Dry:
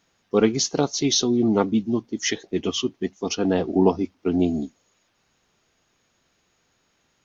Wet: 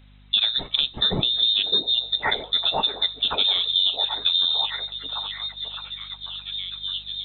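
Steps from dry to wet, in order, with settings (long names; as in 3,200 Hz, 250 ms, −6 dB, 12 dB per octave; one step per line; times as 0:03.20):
mains-hum notches 60/120/180/240/300/360 Hz
voice inversion scrambler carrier 3,900 Hz
in parallel at +0.5 dB: brickwall limiter −12.5 dBFS, peak gain reduction 7.5 dB
on the sum: mains hum 50 Hz, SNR 31 dB
on a send: echo through a band-pass that steps 615 ms, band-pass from 360 Hz, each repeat 0.7 octaves, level −1.5 dB
on the sum: downward compressor 6 to 1, threshold −18 dBFS, peak gain reduction 10 dB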